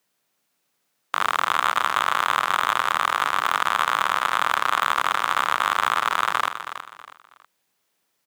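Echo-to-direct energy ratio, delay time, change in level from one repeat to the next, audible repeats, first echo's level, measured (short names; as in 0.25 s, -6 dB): -10.0 dB, 0.322 s, -10.0 dB, 3, -10.5 dB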